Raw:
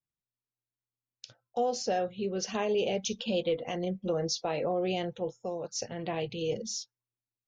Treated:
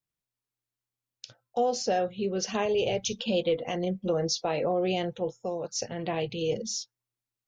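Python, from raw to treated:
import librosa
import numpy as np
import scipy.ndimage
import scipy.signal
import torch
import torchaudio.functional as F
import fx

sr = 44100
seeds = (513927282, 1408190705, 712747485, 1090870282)

y = fx.low_shelf_res(x, sr, hz=140.0, db=8.0, q=3.0, at=(2.65, 3.13))
y = F.gain(torch.from_numpy(y), 3.0).numpy()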